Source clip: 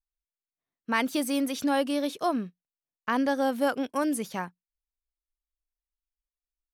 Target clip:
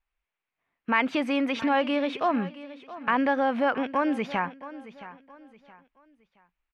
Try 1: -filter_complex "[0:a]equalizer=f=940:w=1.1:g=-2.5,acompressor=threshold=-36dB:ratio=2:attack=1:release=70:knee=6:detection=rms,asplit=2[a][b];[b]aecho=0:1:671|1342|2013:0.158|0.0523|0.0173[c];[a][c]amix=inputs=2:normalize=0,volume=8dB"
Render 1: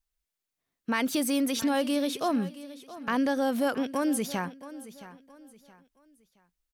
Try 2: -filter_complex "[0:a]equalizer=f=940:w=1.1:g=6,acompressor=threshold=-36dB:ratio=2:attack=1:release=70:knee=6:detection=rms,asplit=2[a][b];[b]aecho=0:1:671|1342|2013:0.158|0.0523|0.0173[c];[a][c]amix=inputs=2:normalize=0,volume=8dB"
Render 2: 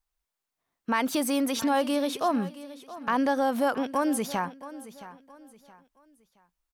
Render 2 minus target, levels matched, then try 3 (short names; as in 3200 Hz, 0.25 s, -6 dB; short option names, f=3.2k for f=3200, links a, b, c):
2000 Hz band -4.5 dB
-filter_complex "[0:a]equalizer=f=940:w=1.1:g=6,acompressor=threshold=-36dB:ratio=2:attack=1:release=70:knee=6:detection=rms,lowpass=f=2.4k:t=q:w=2.5,asplit=2[a][b];[b]aecho=0:1:671|1342|2013:0.158|0.0523|0.0173[c];[a][c]amix=inputs=2:normalize=0,volume=8dB"